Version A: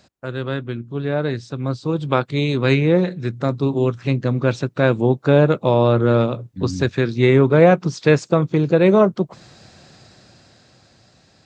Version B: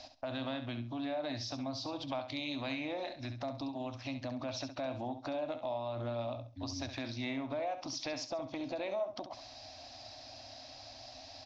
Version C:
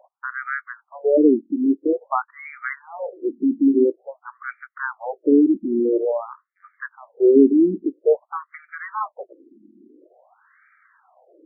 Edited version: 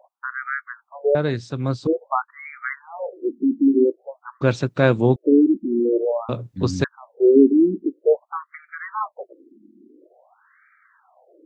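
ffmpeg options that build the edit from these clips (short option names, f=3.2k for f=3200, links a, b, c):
-filter_complex "[0:a]asplit=3[a][b][c];[2:a]asplit=4[d][e][f][g];[d]atrim=end=1.152[h];[a]atrim=start=1.148:end=1.872[i];[e]atrim=start=1.868:end=4.412[j];[b]atrim=start=4.408:end=5.162[k];[f]atrim=start=5.158:end=6.292[l];[c]atrim=start=6.288:end=6.842[m];[g]atrim=start=6.838[n];[h][i]acrossfade=d=0.004:c1=hsin:c2=hsin[o];[o][j]acrossfade=d=0.004:c1=hsin:c2=hsin[p];[p][k]acrossfade=d=0.004:c1=hsin:c2=hsin[q];[q][l]acrossfade=d=0.004:c1=hsin:c2=hsin[r];[r][m]acrossfade=d=0.004:c1=hsin:c2=hsin[s];[s][n]acrossfade=d=0.004:c1=hsin:c2=hsin"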